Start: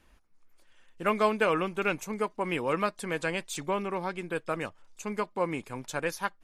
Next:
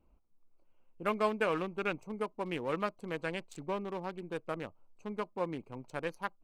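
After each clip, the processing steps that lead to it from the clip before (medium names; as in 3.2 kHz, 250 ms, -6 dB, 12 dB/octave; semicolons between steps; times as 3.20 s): local Wiener filter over 25 samples; trim -5 dB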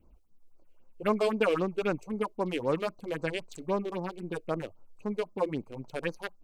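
phase shifter stages 4, 3.8 Hz, lowest notch 150–3200 Hz; trim +7 dB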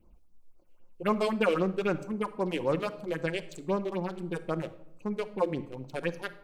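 simulated room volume 2400 m³, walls furnished, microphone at 0.9 m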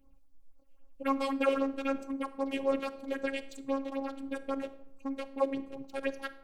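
robot voice 272 Hz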